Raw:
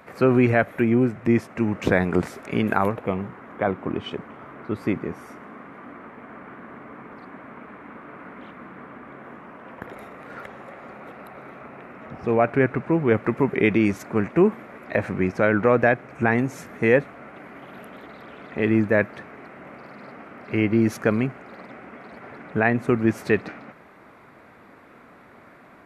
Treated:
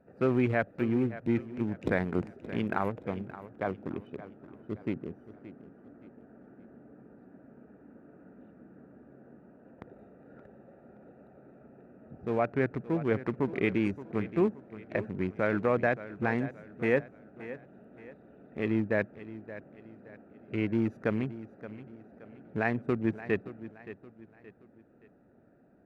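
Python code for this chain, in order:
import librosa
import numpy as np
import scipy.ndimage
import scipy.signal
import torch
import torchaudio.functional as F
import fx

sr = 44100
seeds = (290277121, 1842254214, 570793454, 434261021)

y = fx.wiener(x, sr, points=41)
y = fx.echo_feedback(y, sr, ms=573, feedback_pct=38, wet_db=-15.0)
y = y * librosa.db_to_amplitude(-8.5)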